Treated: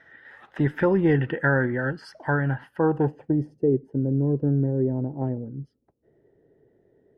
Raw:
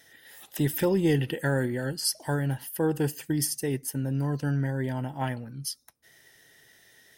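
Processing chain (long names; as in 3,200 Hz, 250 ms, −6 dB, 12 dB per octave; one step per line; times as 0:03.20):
low-pass filter sweep 1,500 Hz → 420 Hz, 0:02.66–0:03.61
level +3 dB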